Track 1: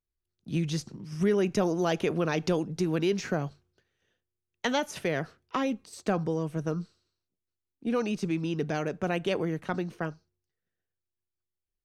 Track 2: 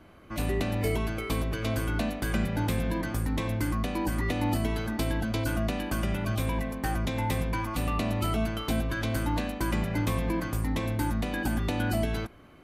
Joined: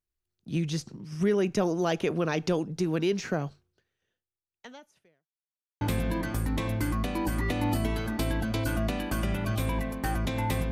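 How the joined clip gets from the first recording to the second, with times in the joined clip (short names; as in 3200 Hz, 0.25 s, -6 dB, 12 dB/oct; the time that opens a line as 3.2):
track 1
3.53–5.31 fade out quadratic
5.31–5.81 mute
5.81 switch to track 2 from 2.61 s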